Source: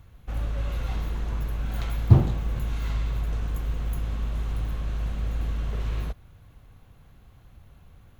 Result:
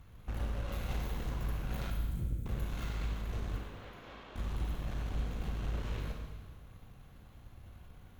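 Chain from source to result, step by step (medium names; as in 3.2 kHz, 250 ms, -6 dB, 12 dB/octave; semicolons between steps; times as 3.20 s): wavefolder -20 dBFS; flange 1.9 Hz, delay 4.1 ms, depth 9 ms, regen -64%; 1.90–2.46 s: inverse Chebyshev band-stop 320–3700 Hz, stop band 50 dB; compression, threshold -34 dBFS, peak gain reduction 7 dB; 3.56–4.36 s: three-band isolator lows -23 dB, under 280 Hz, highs -21 dB, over 5 kHz; Chebyshev shaper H 8 -21 dB, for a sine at -26 dBFS; 0.72–1.31 s: treble shelf 10 kHz +9 dB; Schroeder reverb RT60 1.4 s, combs from 31 ms, DRR 1.5 dB; trim +1 dB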